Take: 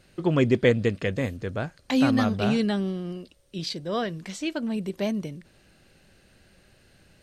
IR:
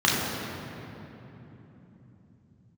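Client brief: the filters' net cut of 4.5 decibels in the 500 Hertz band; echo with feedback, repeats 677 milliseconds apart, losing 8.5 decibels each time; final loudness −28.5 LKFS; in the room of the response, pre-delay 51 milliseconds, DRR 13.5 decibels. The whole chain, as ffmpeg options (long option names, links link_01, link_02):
-filter_complex "[0:a]equalizer=frequency=500:width_type=o:gain=-5.5,aecho=1:1:677|1354|2031|2708:0.376|0.143|0.0543|0.0206,asplit=2[link_01][link_02];[1:a]atrim=start_sample=2205,adelay=51[link_03];[link_02][link_03]afir=irnorm=-1:irlink=0,volume=-32dB[link_04];[link_01][link_04]amix=inputs=2:normalize=0,volume=-1.5dB"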